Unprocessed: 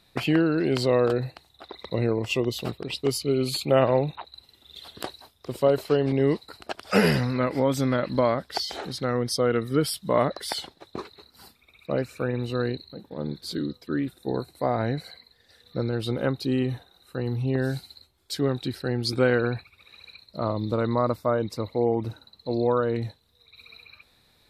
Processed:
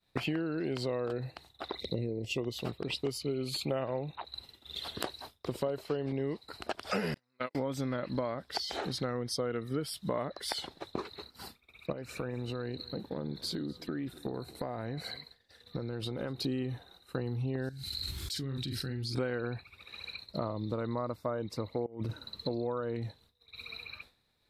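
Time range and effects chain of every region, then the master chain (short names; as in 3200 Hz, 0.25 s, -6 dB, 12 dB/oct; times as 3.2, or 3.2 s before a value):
1.8–2.38 Butterworth band-stop 1200 Hz, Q 0.52 + upward compressor, threshold -42 dBFS
7.14–7.55 HPF 350 Hz 6 dB/oct + gate -25 dBFS, range -45 dB + high shelf 2300 Hz +10 dB
11.92–16.44 compressor, threshold -34 dBFS + echo 0.247 s -22.5 dB
17.69–19.15 passive tone stack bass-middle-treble 6-0-2 + doubler 44 ms -7.5 dB + fast leveller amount 100%
21.86–22.49 bell 770 Hz -10 dB 0.28 oct + negative-ratio compressor -31 dBFS, ratio -0.5
whole clip: expander -50 dBFS; high shelf 7900 Hz -5 dB; compressor 5:1, threshold -37 dBFS; gain +4.5 dB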